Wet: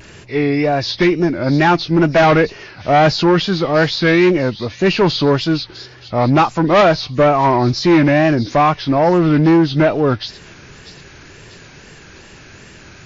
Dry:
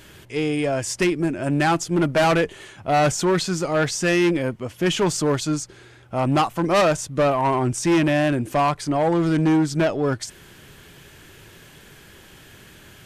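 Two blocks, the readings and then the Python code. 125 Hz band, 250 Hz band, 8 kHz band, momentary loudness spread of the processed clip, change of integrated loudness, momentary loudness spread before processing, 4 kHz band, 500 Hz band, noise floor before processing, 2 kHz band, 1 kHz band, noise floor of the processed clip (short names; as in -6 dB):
+7.0 dB, +7.0 dB, -8.0 dB, 8 LU, +7.0 dB, 7 LU, +7.5 dB, +7.0 dB, -48 dBFS, +7.0 dB, +7.0 dB, -41 dBFS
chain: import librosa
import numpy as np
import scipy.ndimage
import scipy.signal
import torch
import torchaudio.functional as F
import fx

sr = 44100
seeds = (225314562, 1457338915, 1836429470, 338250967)

y = fx.freq_compress(x, sr, knee_hz=1800.0, ratio=1.5)
y = fx.echo_wet_highpass(y, sr, ms=645, feedback_pct=44, hz=4000.0, wet_db=-10.5)
y = fx.wow_flutter(y, sr, seeds[0], rate_hz=2.1, depth_cents=100.0)
y = y * 10.0 ** (7.0 / 20.0)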